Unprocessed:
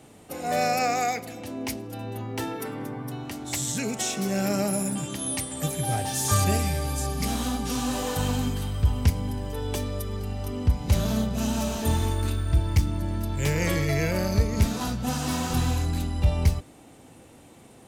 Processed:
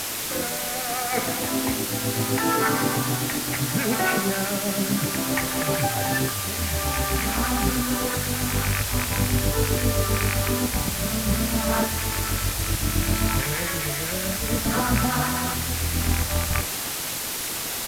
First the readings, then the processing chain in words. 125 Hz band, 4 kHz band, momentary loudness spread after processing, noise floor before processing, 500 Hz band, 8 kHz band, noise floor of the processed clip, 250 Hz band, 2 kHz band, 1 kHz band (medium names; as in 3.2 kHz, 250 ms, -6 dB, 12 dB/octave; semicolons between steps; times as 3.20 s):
-0.5 dB, +7.0 dB, 4 LU, -50 dBFS, +2.5 dB, +6.5 dB, -30 dBFS, +2.5 dB, +8.5 dB, +3.0 dB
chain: rattle on loud lows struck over -25 dBFS, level -23 dBFS; low-pass 2.1 kHz 24 dB/octave; peaking EQ 1.5 kHz +10.5 dB 1.7 oct; compressor with a negative ratio -29 dBFS, ratio -1; rotary cabinet horn 0.65 Hz; harmonic tremolo 7.7 Hz, depth 70%, crossover 900 Hz; word length cut 6-bit, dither triangular; doubling 49 ms -12 dB; trim +8 dB; Vorbis 128 kbps 32 kHz